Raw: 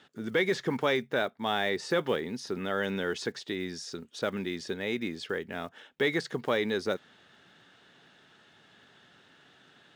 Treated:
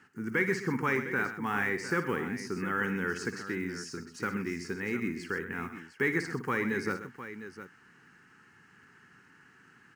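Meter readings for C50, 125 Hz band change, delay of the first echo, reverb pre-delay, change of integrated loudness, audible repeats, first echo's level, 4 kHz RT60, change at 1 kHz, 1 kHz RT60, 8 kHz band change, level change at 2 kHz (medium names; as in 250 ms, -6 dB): no reverb, +2.5 dB, 58 ms, no reverb, -1.0 dB, 3, -11.0 dB, no reverb, 0.0 dB, no reverb, 0.0 dB, +2.5 dB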